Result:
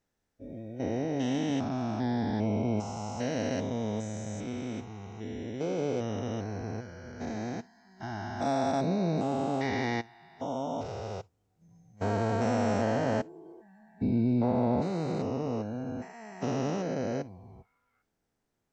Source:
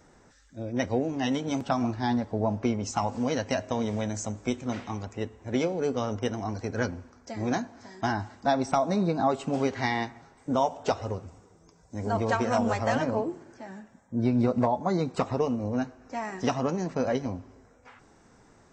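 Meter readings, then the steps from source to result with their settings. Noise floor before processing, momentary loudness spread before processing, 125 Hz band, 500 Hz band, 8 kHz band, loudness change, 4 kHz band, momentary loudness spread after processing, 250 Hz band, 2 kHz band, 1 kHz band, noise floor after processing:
−59 dBFS, 11 LU, −1.0 dB, −3.5 dB, −5.5 dB, −3.0 dB, −4.5 dB, 13 LU, −2.0 dB, −5.5 dB, −5.5 dB, −81 dBFS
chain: spectrum averaged block by block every 400 ms
parametric band 1,100 Hz −6 dB 0.42 octaves
background noise pink −64 dBFS
noise reduction from a noise print of the clip's start 16 dB
expander for the loud parts 1.5 to 1, over −46 dBFS
level +2.5 dB

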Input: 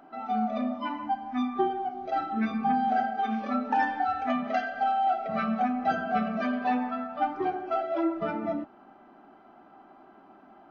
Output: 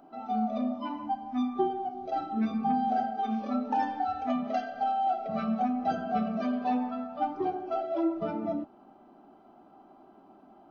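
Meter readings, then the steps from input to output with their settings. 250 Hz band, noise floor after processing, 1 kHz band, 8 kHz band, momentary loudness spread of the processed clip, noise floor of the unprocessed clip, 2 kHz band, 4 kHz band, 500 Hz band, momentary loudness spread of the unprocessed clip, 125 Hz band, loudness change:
0.0 dB, −57 dBFS, −2.5 dB, can't be measured, 6 LU, −55 dBFS, −10.5 dB, −4.0 dB, −1.5 dB, 6 LU, 0.0 dB, −2.0 dB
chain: parametric band 1,800 Hz −12 dB 1.2 octaves

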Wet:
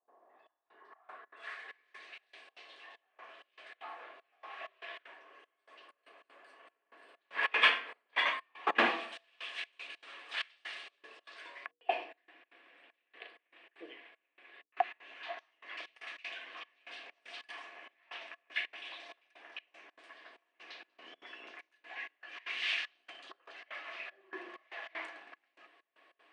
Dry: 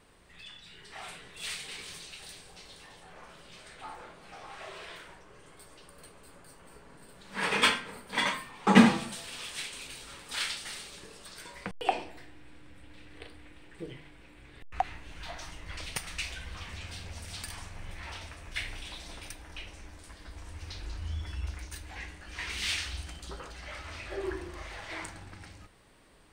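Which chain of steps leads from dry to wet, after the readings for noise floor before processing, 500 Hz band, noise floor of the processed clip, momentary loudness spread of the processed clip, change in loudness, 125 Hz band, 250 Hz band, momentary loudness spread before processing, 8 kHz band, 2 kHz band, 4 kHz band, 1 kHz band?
−54 dBFS, −6.0 dB, −83 dBFS, 22 LU, −4.0 dB, below −30 dB, −20.5 dB, 20 LU, below −20 dB, −0.5 dB, −4.5 dB, −4.0 dB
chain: sub-octave generator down 1 octave, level −1 dB
high-shelf EQ 5,700 Hz +8 dB
mains-hum notches 60/120/180/240/300/360/420/480 Hz
low-pass filter sweep 830 Hz → 2,700 Hz, 0:00.36–0:02.49
Butterworth high-pass 300 Hz 36 dB per octave
gate pattern ".xxxxx...xxx..xx" 193 BPM −24 dB
hollow resonant body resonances 690/1,100/1,700 Hz, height 11 dB, ringing for 35 ms
highs frequency-modulated by the lows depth 0.13 ms
level −8 dB

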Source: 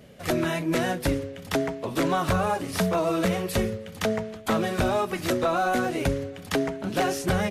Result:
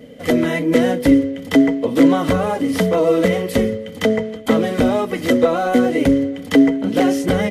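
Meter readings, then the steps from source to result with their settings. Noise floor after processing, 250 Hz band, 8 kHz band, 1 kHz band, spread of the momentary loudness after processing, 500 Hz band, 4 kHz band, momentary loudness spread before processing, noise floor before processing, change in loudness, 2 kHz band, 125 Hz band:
−33 dBFS, +13.0 dB, +1.5 dB, +3.5 dB, 5 LU, +9.5 dB, +5.0 dB, 5 LU, −42 dBFS, +9.5 dB, +5.5 dB, +4.5 dB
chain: hollow resonant body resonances 270/470/2,000/3,100 Hz, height 17 dB, ringing for 60 ms
level +1.5 dB

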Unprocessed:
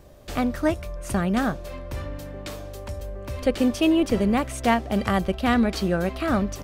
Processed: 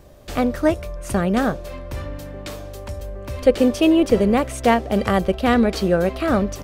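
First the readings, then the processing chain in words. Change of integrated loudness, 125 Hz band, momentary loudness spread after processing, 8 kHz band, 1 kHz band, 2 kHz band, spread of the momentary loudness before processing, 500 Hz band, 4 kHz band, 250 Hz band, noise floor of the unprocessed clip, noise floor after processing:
+4.5 dB, +2.5 dB, 16 LU, +2.5 dB, +3.5 dB, +2.5 dB, 15 LU, +7.0 dB, +2.5 dB, +3.5 dB, −38 dBFS, −35 dBFS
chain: dynamic equaliser 480 Hz, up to +7 dB, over −38 dBFS, Q 2.1
level +2.5 dB

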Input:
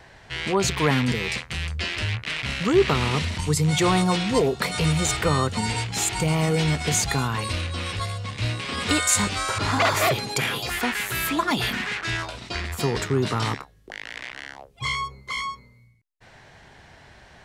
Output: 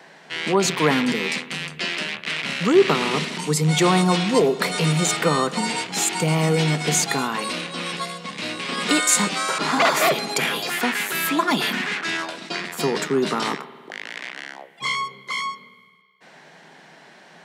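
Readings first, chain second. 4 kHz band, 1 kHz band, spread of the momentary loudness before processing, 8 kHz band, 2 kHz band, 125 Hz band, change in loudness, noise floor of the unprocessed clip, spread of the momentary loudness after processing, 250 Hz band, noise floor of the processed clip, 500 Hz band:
+2.5 dB, +3.0 dB, 11 LU, +2.5 dB, +2.5 dB, −1.5 dB, +2.5 dB, −52 dBFS, 12 LU, +3.0 dB, −49 dBFS, +3.5 dB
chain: elliptic high-pass filter 160 Hz, stop band 40 dB
spring reverb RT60 2 s, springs 52 ms, chirp 55 ms, DRR 15.5 dB
level +3.5 dB

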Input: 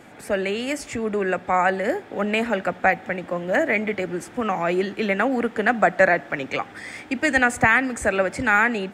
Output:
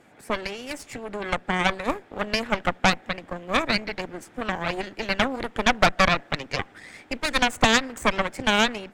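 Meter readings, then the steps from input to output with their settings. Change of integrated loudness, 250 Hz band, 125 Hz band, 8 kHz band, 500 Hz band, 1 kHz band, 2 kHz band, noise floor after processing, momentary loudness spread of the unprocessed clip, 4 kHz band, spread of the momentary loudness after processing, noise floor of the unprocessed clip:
−2.5 dB, −3.5 dB, +0.5 dB, +2.0 dB, −6.0 dB, −2.0 dB, −4.0 dB, −53 dBFS, 10 LU, +9.5 dB, 14 LU, −43 dBFS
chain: harmonic and percussive parts rebalanced percussive +5 dB
harmonic generator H 3 −11 dB, 5 −27 dB, 6 −11 dB, 8 −26 dB, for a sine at 0.5 dBFS
level −3 dB

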